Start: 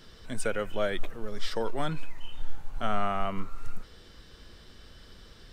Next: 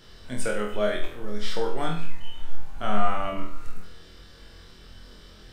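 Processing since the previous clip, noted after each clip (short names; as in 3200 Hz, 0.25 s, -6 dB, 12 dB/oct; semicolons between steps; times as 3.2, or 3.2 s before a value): flutter echo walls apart 4.1 m, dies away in 0.51 s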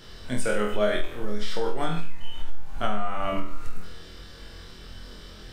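compressor 10:1, threshold -21 dBFS, peak gain reduction 11 dB; gain +4.5 dB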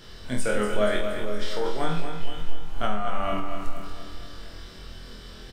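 feedback echo 0.236 s, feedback 55%, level -8 dB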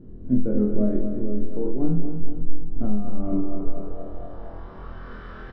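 low-pass sweep 280 Hz -> 1400 Hz, 3.16–5.17; gain +4 dB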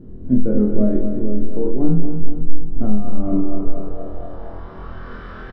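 doubler 37 ms -13.5 dB; gain +5 dB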